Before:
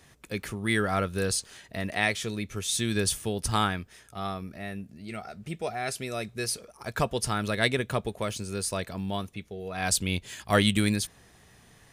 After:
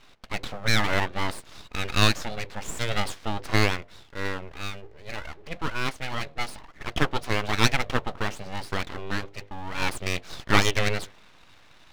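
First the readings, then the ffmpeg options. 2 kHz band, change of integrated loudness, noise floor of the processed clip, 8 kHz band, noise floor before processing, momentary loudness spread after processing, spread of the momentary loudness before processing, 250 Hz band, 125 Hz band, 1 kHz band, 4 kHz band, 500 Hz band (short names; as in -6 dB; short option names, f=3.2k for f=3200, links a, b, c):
+3.5 dB, +1.5 dB, -53 dBFS, -5.5 dB, -58 dBFS, 15 LU, 12 LU, -2.0 dB, +1.5 dB, +2.5 dB, +3.0 dB, -1.0 dB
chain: -af "highpass=180,equalizer=f=360:t=q:w=4:g=4,equalizer=f=900:t=q:w=4:g=9,equalizer=f=1.9k:t=q:w=4:g=8,lowpass=f=4k:w=0.5412,lowpass=f=4k:w=1.3066,bandreject=f=50:t=h:w=6,bandreject=f=100:t=h:w=6,bandreject=f=150:t=h:w=6,bandreject=f=200:t=h:w=6,bandreject=f=250:t=h:w=6,bandreject=f=300:t=h:w=6,bandreject=f=350:t=h:w=6,aeval=exprs='abs(val(0))':c=same,volume=3.5dB"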